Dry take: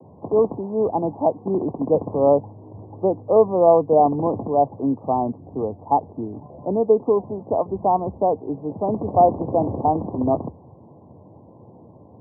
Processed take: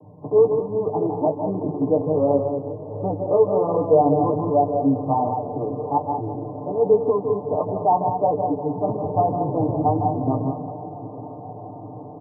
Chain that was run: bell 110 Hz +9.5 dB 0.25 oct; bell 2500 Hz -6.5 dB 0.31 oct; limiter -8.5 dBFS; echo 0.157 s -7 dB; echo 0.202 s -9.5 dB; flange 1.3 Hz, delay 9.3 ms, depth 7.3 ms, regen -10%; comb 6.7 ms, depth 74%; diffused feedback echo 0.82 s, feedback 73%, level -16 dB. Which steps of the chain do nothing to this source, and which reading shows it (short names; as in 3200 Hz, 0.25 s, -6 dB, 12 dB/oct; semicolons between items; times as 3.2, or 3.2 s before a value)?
bell 2500 Hz: input band ends at 1200 Hz